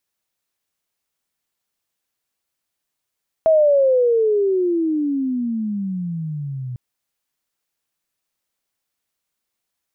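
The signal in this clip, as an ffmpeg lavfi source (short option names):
-f lavfi -i "aevalsrc='pow(10,(-10-15.5*t/3.3)/20)*sin(2*PI*653*3.3/(-29*log(2)/12)*(exp(-29*log(2)/12*t/3.3)-1))':d=3.3:s=44100"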